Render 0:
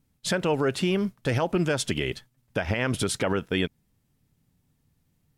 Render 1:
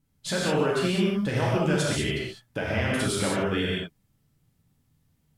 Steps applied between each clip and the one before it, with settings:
reverb whose tail is shaped and stops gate 230 ms flat, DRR −5.5 dB
level −5.5 dB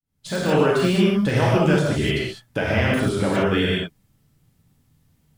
fade in at the beginning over 0.51 s
de-essing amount 95%
level +6.5 dB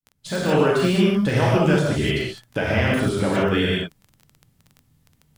surface crackle 15 per second −32 dBFS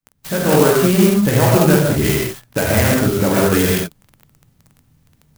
converter with an unsteady clock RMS 0.071 ms
level +5.5 dB

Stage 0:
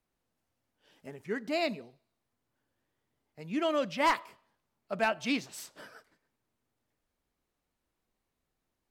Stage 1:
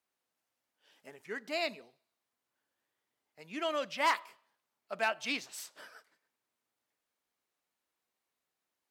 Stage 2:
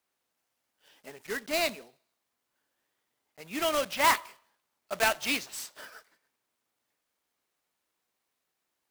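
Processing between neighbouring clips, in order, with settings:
high-pass filter 850 Hz 6 dB per octave
one scale factor per block 3 bits; level +5 dB

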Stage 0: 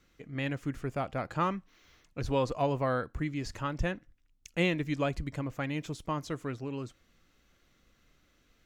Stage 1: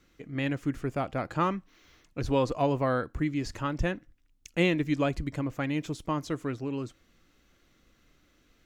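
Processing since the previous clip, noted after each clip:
parametric band 310 Hz +4 dB 0.63 octaves
level +2 dB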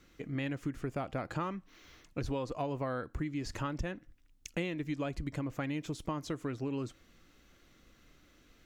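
downward compressor 6 to 1, threshold −35 dBFS, peak gain reduction 14.5 dB
level +2 dB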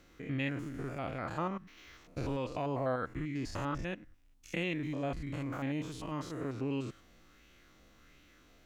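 spectrum averaged block by block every 100 ms
auto-filter bell 1.4 Hz 640–2,800 Hz +7 dB
level +1.5 dB

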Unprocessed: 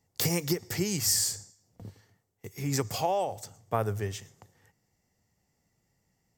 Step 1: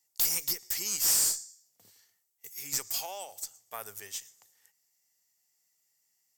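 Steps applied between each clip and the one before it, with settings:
first difference
tube saturation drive 28 dB, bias 0.25
level +7 dB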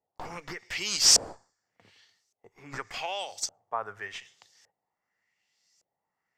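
auto-filter low-pass saw up 0.86 Hz 590–6,100 Hz
level +5.5 dB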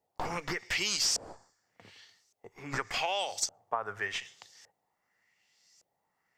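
downward compressor 10 to 1, threshold −32 dBFS, peak gain reduction 17 dB
level +5 dB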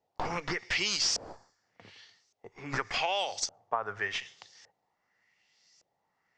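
low-pass filter 6,300 Hz 24 dB per octave
level +1.5 dB

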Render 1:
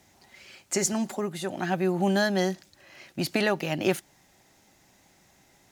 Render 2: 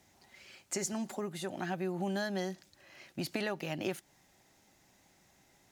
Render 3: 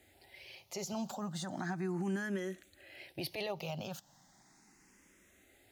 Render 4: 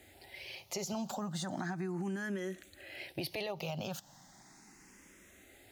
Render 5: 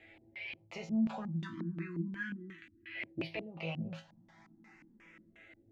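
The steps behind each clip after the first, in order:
downward compressor 2.5 to 1, threshold −28 dBFS, peak gain reduction 7 dB; level −5.5 dB
brickwall limiter −30 dBFS, peak gain reduction 10 dB; frequency shifter mixed with the dry sound +0.36 Hz; level +4 dB
downward compressor 5 to 1, threshold −41 dBFS, peak gain reduction 9 dB; level +6 dB
time-frequency box erased 0:01.41–0:02.96, 370–930 Hz; resonators tuned to a chord A2 fifth, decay 0.24 s; auto-filter low-pass square 2.8 Hz 260–2,400 Hz; level +9 dB

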